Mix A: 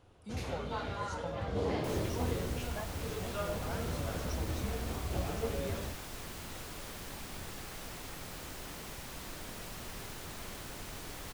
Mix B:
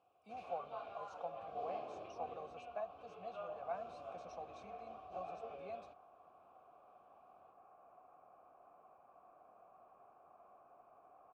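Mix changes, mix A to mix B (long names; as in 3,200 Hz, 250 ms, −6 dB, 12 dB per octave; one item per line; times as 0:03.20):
speech +8.5 dB
second sound: add transistor ladder low-pass 1,500 Hz, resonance 25%
master: add formant filter a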